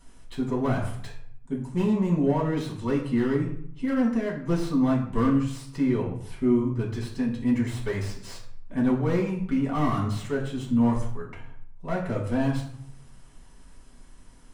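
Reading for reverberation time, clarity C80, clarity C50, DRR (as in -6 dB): 0.65 s, 10.0 dB, 6.5 dB, -5.0 dB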